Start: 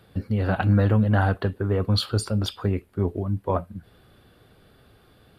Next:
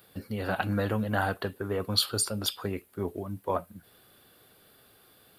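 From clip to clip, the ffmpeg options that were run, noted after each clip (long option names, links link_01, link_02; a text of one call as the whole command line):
ffmpeg -i in.wav -af "aemphasis=mode=production:type=bsi,volume=-3dB" out.wav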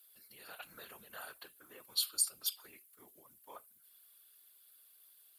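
ffmpeg -i in.wav -af "afftfilt=real='hypot(re,im)*cos(2*PI*random(0))':imag='hypot(re,im)*sin(2*PI*random(1))':win_size=512:overlap=0.75,afreqshift=-62,aderivative,volume=2.5dB" out.wav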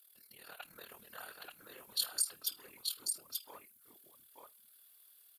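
ffmpeg -i in.wav -af "tremolo=f=38:d=0.71,aecho=1:1:882:0.668,volume=2dB" out.wav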